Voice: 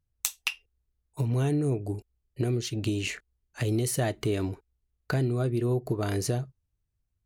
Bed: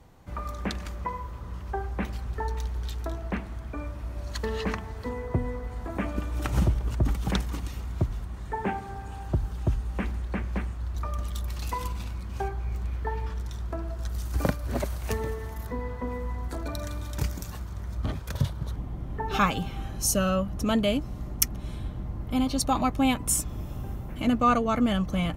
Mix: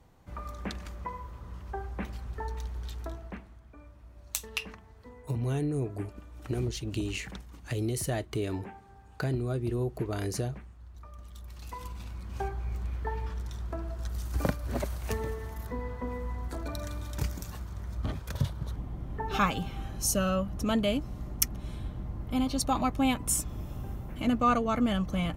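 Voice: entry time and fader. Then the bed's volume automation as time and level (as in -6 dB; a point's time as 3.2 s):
4.10 s, -4.0 dB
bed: 3.08 s -5.5 dB
3.6 s -16.5 dB
11.12 s -16.5 dB
12.4 s -3 dB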